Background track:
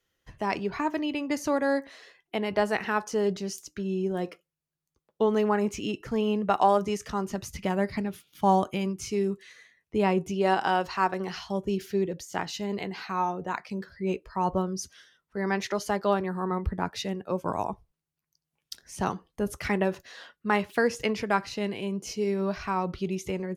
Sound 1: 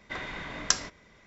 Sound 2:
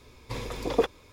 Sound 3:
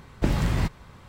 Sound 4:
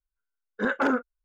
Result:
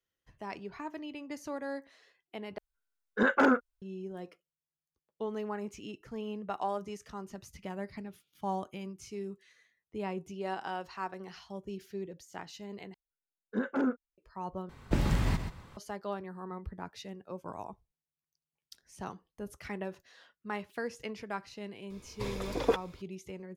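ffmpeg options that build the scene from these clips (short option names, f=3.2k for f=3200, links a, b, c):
-filter_complex "[4:a]asplit=2[a][b];[0:a]volume=-12.5dB[c];[b]equalizer=f=240:t=o:w=2.3:g=12[d];[3:a]aecho=1:1:130|260:0.376|0.0601[e];[c]asplit=4[f][g][h][i];[f]atrim=end=2.584[j];[a]atrim=end=1.24[k];[g]atrim=start=3.816:end=12.944[l];[d]atrim=end=1.24,asetpts=PTS-STARTPTS,volume=-14.5dB[m];[h]atrim=start=14.176:end=14.694[n];[e]atrim=end=1.08,asetpts=PTS-STARTPTS,volume=-5dB[o];[i]atrim=start=15.766[p];[2:a]atrim=end=1.12,asetpts=PTS-STARTPTS,volume=-3.5dB,afade=t=in:d=0.004:c=hsin,afade=t=out:st=1.116:d=0.004:c=hsin,adelay=21900[q];[j][k]acrossfade=d=0.004:c1=hsin:c2=hsin[r];[r][l]acrossfade=d=0.004:c1=hsin:c2=hsin[s];[s][m]acrossfade=d=0.004:c1=hsin:c2=hsin[t];[t][n]acrossfade=d=0.004:c1=hsin:c2=hsin[u];[u][o]acrossfade=d=0.004:c1=hsin:c2=hsin[v];[v][p]acrossfade=d=0.004:c1=hsin:c2=hsin[w];[w][q]amix=inputs=2:normalize=0"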